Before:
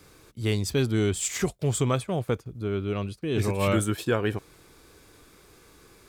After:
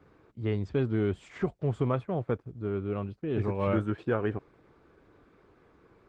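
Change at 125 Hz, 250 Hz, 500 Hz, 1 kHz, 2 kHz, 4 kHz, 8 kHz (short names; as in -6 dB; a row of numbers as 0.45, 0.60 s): -4.0 dB, -3.0 dB, -3.0 dB, -3.5 dB, -7.5 dB, -16.5 dB, under -30 dB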